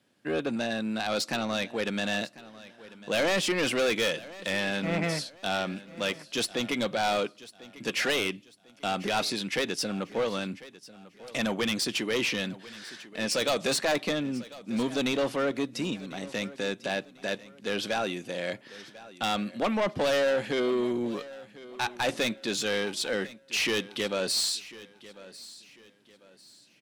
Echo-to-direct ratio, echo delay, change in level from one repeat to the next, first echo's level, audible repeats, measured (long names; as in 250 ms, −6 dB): −18.0 dB, 1,046 ms, −9.5 dB, −18.5 dB, 2